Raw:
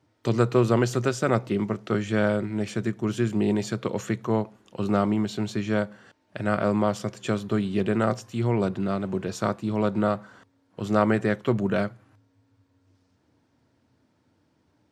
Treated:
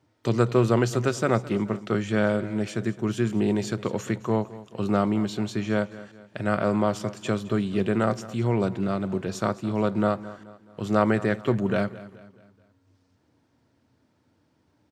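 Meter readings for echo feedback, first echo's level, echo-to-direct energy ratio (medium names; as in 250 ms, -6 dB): 44%, -17.5 dB, -16.5 dB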